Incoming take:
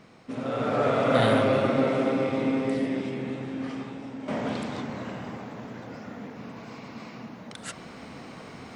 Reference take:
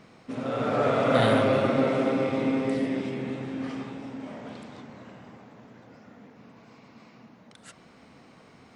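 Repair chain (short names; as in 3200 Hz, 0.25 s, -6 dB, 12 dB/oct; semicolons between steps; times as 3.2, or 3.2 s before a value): gain correction -10.5 dB, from 4.28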